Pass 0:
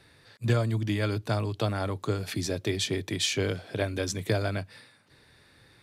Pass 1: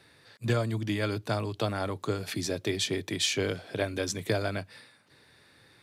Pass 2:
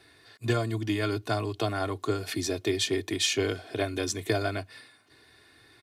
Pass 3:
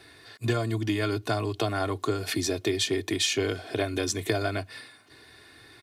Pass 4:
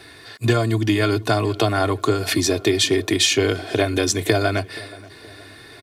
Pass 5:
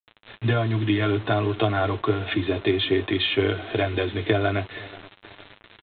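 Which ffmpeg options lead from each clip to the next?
-af "highpass=f=140:p=1"
-af "aecho=1:1:2.8:0.64"
-af "acompressor=threshold=0.0251:ratio=2,volume=1.88"
-filter_complex "[0:a]asplit=2[s0][s1];[s1]adelay=475,lowpass=f=2300:p=1,volume=0.1,asplit=2[s2][s3];[s3]adelay=475,lowpass=f=2300:p=1,volume=0.48,asplit=2[s4][s5];[s5]adelay=475,lowpass=f=2300:p=1,volume=0.48,asplit=2[s6][s7];[s7]adelay=475,lowpass=f=2300:p=1,volume=0.48[s8];[s0][s2][s4][s6][s8]amix=inputs=5:normalize=0,volume=2.66"
-af "aresample=8000,acrusher=bits=5:mix=0:aa=0.000001,aresample=44100,flanger=delay=8.9:depth=1.5:regen=-37:speed=0.51:shape=sinusoidal"

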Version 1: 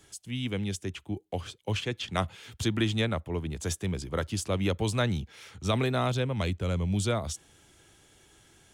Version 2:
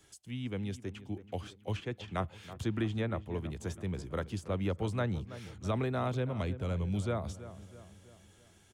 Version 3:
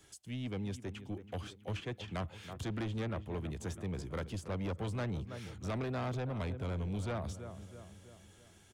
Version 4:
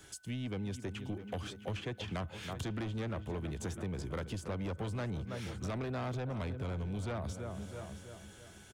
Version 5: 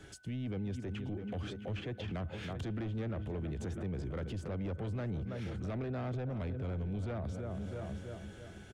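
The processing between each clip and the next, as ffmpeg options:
-filter_complex "[0:a]acrossover=split=610|2000[s0][s1][s2];[s2]acompressor=threshold=0.00501:ratio=6[s3];[s0][s1][s3]amix=inputs=3:normalize=0,asplit=2[s4][s5];[s5]adelay=327,lowpass=f=2400:p=1,volume=0.2,asplit=2[s6][s7];[s7]adelay=327,lowpass=f=2400:p=1,volume=0.52,asplit=2[s8][s9];[s9]adelay=327,lowpass=f=2400:p=1,volume=0.52,asplit=2[s10][s11];[s11]adelay=327,lowpass=f=2400:p=1,volume=0.52,asplit=2[s12][s13];[s13]adelay=327,lowpass=f=2400:p=1,volume=0.52[s14];[s4][s6][s8][s10][s12][s14]amix=inputs=6:normalize=0,volume=0.562"
-af "asoftclip=type=tanh:threshold=0.02,volume=1.12"
-af "aecho=1:1:669:0.126,acompressor=threshold=0.00794:ratio=6,aeval=exprs='val(0)+0.000282*sin(2*PI*1500*n/s)':c=same,volume=2"
-af "lowpass=f=1500:p=1,equalizer=f=1000:w=2.3:g=-6.5,alimiter=level_in=5.96:limit=0.0631:level=0:latency=1:release=32,volume=0.168,volume=2.11"

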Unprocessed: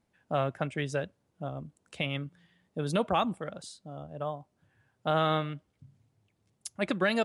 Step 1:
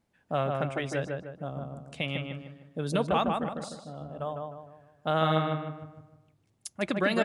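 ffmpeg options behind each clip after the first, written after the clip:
-filter_complex "[0:a]asplit=2[s0][s1];[s1]adelay=153,lowpass=f=2100:p=1,volume=0.708,asplit=2[s2][s3];[s3]adelay=153,lowpass=f=2100:p=1,volume=0.43,asplit=2[s4][s5];[s5]adelay=153,lowpass=f=2100:p=1,volume=0.43,asplit=2[s6][s7];[s7]adelay=153,lowpass=f=2100:p=1,volume=0.43,asplit=2[s8][s9];[s9]adelay=153,lowpass=f=2100:p=1,volume=0.43,asplit=2[s10][s11];[s11]adelay=153,lowpass=f=2100:p=1,volume=0.43[s12];[s0][s2][s4][s6][s8][s10][s12]amix=inputs=7:normalize=0"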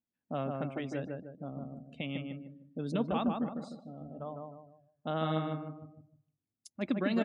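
-af "afftdn=nr=17:nf=-47,equalizer=f=250:t=o:w=0.67:g=11,equalizer=f=1600:t=o:w=0.67:g=-3,equalizer=f=10000:t=o:w=0.67:g=-8,volume=0.398"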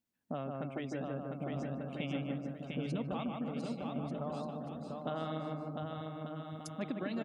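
-af "acompressor=threshold=0.01:ratio=5,aecho=1:1:700|1190|1533|1773|1941:0.631|0.398|0.251|0.158|0.1,volume=1.58"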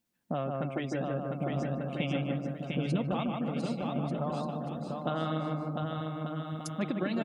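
-af "aecho=1:1:5.7:0.31,volume=2"

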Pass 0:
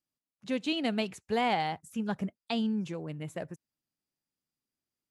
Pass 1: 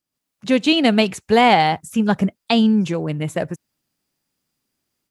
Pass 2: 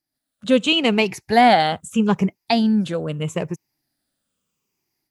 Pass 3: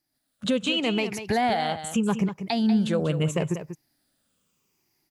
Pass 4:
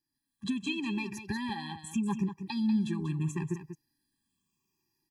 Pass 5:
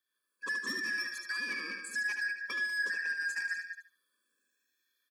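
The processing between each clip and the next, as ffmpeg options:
-af "dynaudnorm=f=110:g=3:m=2.82,volume=2"
-af "afftfilt=real='re*pow(10,10/40*sin(2*PI*(0.76*log(max(b,1)*sr/1024/100)/log(2)-(-0.79)*(pts-256)/sr)))':imag='im*pow(10,10/40*sin(2*PI*(0.76*log(max(b,1)*sr/1024/100)/log(2)-(-0.79)*(pts-256)/sr)))':win_size=1024:overlap=0.75,volume=0.794"
-filter_complex "[0:a]asplit=2[s0][s1];[s1]acompressor=threshold=0.0501:ratio=6,volume=1.41[s2];[s0][s2]amix=inputs=2:normalize=0,alimiter=limit=0.251:level=0:latency=1:release=316,aecho=1:1:191:0.316,volume=0.668"
-af "afftfilt=real='re*eq(mod(floor(b*sr/1024/390),2),0)':imag='im*eq(mod(floor(b*sr/1024/390),2),0)':win_size=1024:overlap=0.75,volume=0.501"
-filter_complex "[0:a]afftfilt=real='real(if(lt(b,272),68*(eq(floor(b/68),0)*2+eq(floor(b/68),1)*0+eq(floor(b/68),2)*3+eq(floor(b/68),3)*1)+mod(b,68),b),0)':imag='imag(if(lt(b,272),68*(eq(floor(b/68),0)*2+eq(floor(b/68),1)*0+eq(floor(b/68),2)*3+eq(floor(b/68),3)*1)+mod(b,68),b),0)':win_size=2048:overlap=0.75,acrossover=split=160[s0][s1];[s1]asoftclip=type=tanh:threshold=0.0316[s2];[s0][s2]amix=inputs=2:normalize=0,aecho=1:1:74|148|222:0.447|0.0938|0.0197"

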